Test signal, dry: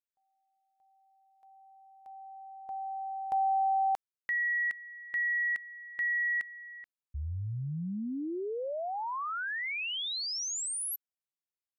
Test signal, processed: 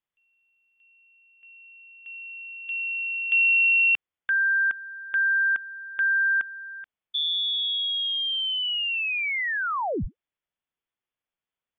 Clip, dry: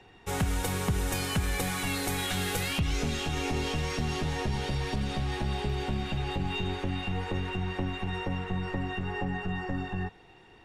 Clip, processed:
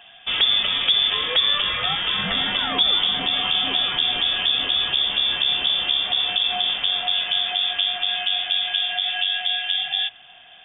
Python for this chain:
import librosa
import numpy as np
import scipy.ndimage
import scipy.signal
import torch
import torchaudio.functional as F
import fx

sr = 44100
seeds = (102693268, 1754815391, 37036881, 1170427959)

y = fx.freq_invert(x, sr, carrier_hz=3500)
y = y * 10.0 ** (8.0 / 20.0)